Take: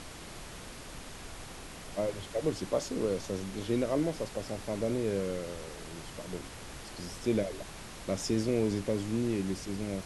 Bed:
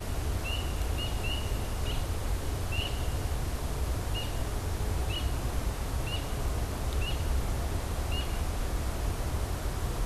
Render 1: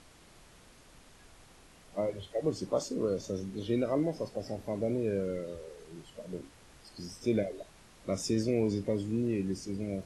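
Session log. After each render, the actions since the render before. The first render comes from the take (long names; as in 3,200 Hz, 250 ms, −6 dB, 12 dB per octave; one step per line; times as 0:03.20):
noise reduction from a noise print 12 dB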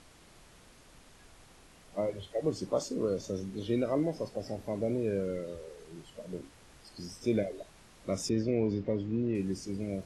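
0:08.29–0:09.35: high-frequency loss of the air 190 metres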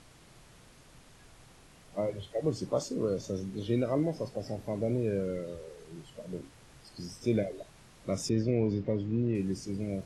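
parametric band 130 Hz +7 dB 0.57 octaves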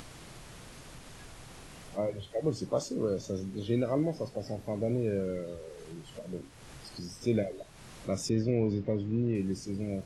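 upward compression, threshold −39 dBFS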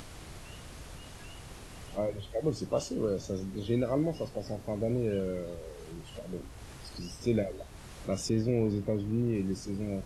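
mix in bed −18.5 dB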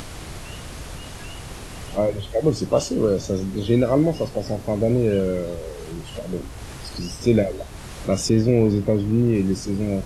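level +11 dB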